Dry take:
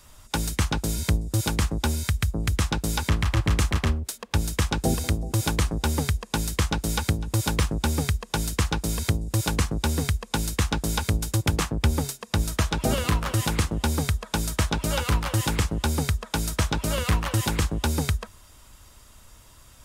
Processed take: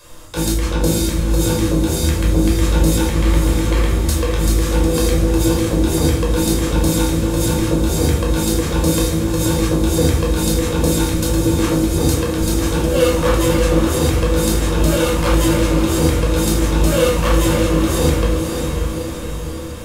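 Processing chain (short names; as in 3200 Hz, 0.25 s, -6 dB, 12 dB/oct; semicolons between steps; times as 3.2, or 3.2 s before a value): low shelf 290 Hz -6.5 dB; negative-ratio compressor -29 dBFS, ratio -0.5; small resonant body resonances 330/490 Hz, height 16 dB, ringing for 85 ms; on a send: diffused feedback echo 0.572 s, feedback 58%, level -5 dB; on the sum: shoebox room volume 800 m³, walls furnished, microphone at 5.3 m; gain +1.5 dB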